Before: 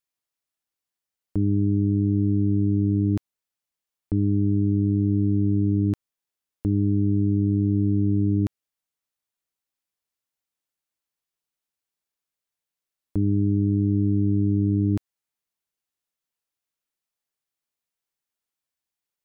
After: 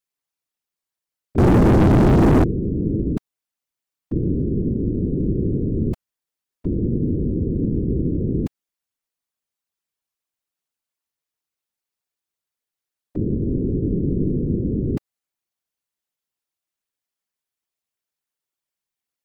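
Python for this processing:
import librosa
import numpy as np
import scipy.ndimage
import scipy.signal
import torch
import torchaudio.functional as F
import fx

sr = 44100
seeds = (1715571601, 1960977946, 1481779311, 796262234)

y = fx.whisperise(x, sr, seeds[0])
y = fx.leveller(y, sr, passes=5, at=(1.38, 2.44))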